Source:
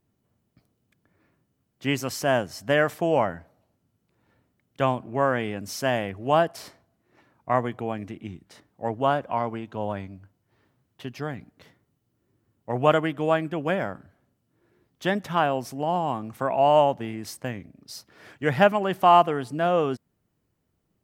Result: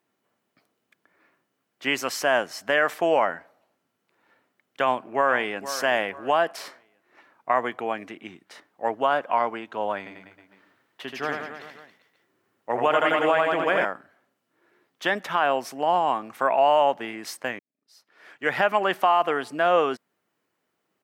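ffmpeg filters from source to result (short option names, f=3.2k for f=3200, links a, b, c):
-filter_complex "[0:a]asplit=2[a][b];[b]afade=t=in:st=4.81:d=0.01,afade=t=out:st=5.6:d=0.01,aecho=0:1:470|940|1410:0.177828|0.0533484|0.0160045[c];[a][c]amix=inputs=2:normalize=0,asettb=1/sr,asplit=3[d][e][f];[d]atrim=end=9.984[g];[e]atrim=start=9.98:end=13.85,asetpts=PTS-STARTPTS,afade=t=in:d=0.004:c=qsin,afade=t=out:st=3.866:d=0.004:c=qsin,aecho=1:1:80|172|277.8|399.5|539.4:0.631|0.398|0.251|0.158|0.1,atrim=end_sample=170667[h];[f]atrim=start=13.846[i];[g][h]acrossfade=d=0.004:c1=hsin:c2=qsin[j];[j][i]acrossfade=d=0.004:c1=qsin:c2=hsin,asplit=2[k][l];[k]atrim=end=17.59,asetpts=PTS-STARTPTS,afade=t=out:st=17.586:d=0.004:c=hsin[m];[l]atrim=start=17.59,asetpts=PTS-STARTPTS,afade=t=in:d=1.02:c=qua[n];[m][n]concat=n=2:v=0:a=1,highpass=310,equalizer=f=1.7k:t=o:w=2.5:g=8,alimiter=limit=-10dB:level=0:latency=1:release=69"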